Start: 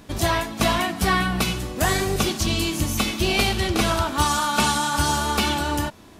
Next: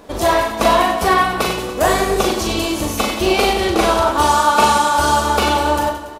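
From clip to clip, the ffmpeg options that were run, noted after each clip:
-af "equalizer=f=125:t=o:w=1:g=-9,equalizer=f=500:t=o:w=1:g=11,equalizer=f=1000:t=o:w=1:g=6,aecho=1:1:40|96|174.4|284.2|437.8:0.631|0.398|0.251|0.158|0.1"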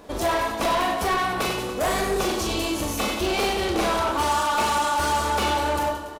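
-filter_complex "[0:a]asoftclip=type=tanh:threshold=0.178,asplit=2[s0][s1];[s1]adelay=25,volume=0.282[s2];[s0][s2]amix=inputs=2:normalize=0,volume=0.631"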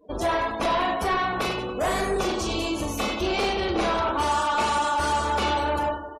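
-af "afftdn=nr=34:nf=-37,volume=0.891"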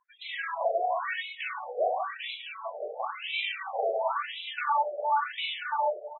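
-af "afftfilt=real='re*between(b*sr/1024,540*pow(2900/540,0.5+0.5*sin(2*PI*0.96*pts/sr))/1.41,540*pow(2900/540,0.5+0.5*sin(2*PI*0.96*pts/sr))*1.41)':imag='im*between(b*sr/1024,540*pow(2900/540,0.5+0.5*sin(2*PI*0.96*pts/sr))/1.41,540*pow(2900/540,0.5+0.5*sin(2*PI*0.96*pts/sr))*1.41)':win_size=1024:overlap=0.75"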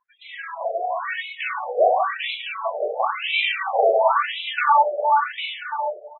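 -af "lowpass=3400,dynaudnorm=f=300:g=9:m=3.76"

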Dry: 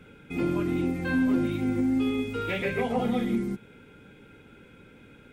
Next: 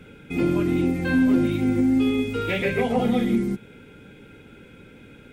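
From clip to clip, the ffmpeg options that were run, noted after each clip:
-af "equalizer=f=1100:w=1.5:g=-4,volume=1.88"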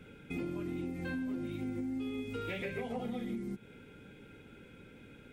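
-af "acompressor=threshold=0.0398:ratio=6,volume=0.422"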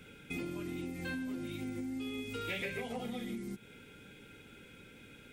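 -af "highshelf=f=2200:g=11.5,volume=0.75"

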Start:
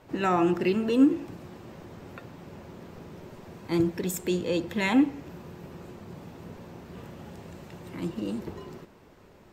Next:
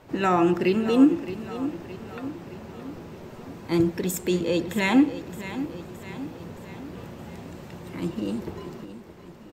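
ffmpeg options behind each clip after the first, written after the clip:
-af "aecho=1:1:618|1236|1854|2472|3090:0.224|0.119|0.0629|0.0333|0.0177,volume=1.41"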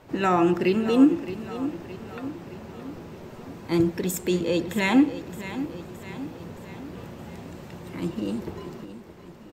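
-af anull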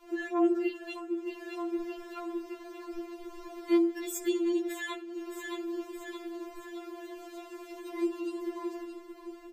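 -af "acompressor=threshold=0.0398:ratio=10,afftfilt=real='re*4*eq(mod(b,16),0)':imag='im*4*eq(mod(b,16),0)':win_size=2048:overlap=0.75"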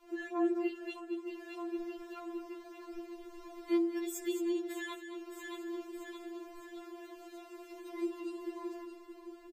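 -af "aecho=1:1:218:0.316,volume=0.531"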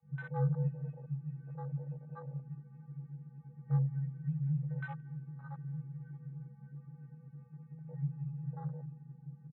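-af "aecho=1:1:176|352|528|704:0.282|0.116|0.0474|0.0194,highpass=f=160:t=q:w=0.5412,highpass=f=160:t=q:w=1.307,lowpass=f=2000:t=q:w=0.5176,lowpass=f=2000:t=q:w=0.7071,lowpass=f=2000:t=q:w=1.932,afreqshift=-200,afwtdn=0.00708"

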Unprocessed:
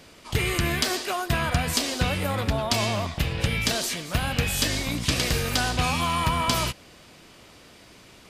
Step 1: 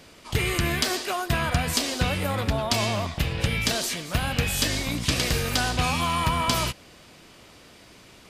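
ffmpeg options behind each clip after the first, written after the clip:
-af anull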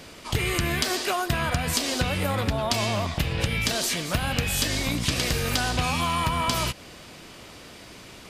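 -af "acompressor=threshold=0.0398:ratio=4,volume=1.88"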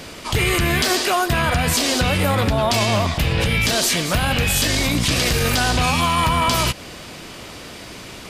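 -af "alimiter=limit=0.126:level=0:latency=1:release=13,volume=2.66"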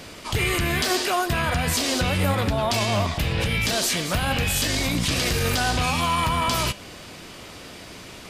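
-af "flanger=delay=9.8:depth=1.7:regen=84:speed=0.31:shape=sinusoidal"

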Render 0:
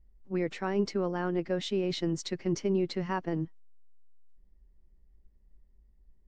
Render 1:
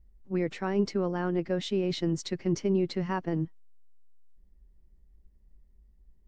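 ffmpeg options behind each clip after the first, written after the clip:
-af "equalizer=f=92:w=0.41:g=4"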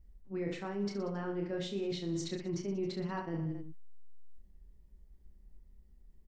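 -af "aecho=1:1:30|69|119.7|185.6|271.3:0.631|0.398|0.251|0.158|0.1,areverse,acompressor=threshold=0.0178:ratio=4,areverse"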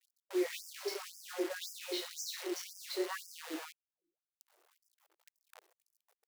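-af "flanger=delay=17.5:depth=2.1:speed=1.2,acrusher=bits=9:dc=4:mix=0:aa=0.000001,afftfilt=real='re*gte(b*sr/1024,300*pow(4900/300,0.5+0.5*sin(2*PI*1.9*pts/sr)))':imag='im*gte(b*sr/1024,300*pow(4900/300,0.5+0.5*sin(2*PI*1.9*pts/sr)))':win_size=1024:overlap=0.75,volume=2.37"

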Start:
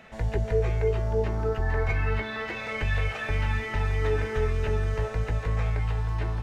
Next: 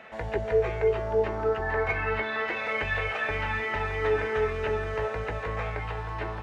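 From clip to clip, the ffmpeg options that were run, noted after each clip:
-af "highpass=44,bass=f=250:g=-13,treble=f=4000:g=-12,volume=1.68"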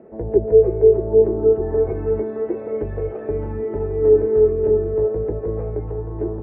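-af "lowpass=f=370:t=q:w=3.9,volume=2.11"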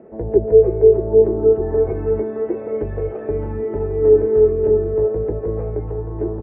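-af "aresample=8000,aresample=44100,volume=1.19"

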